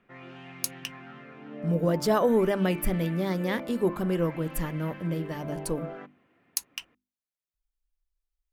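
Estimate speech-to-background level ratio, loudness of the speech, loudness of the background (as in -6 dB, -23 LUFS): 13.5 dB, -28.5 LUFS, -42.0 LUFS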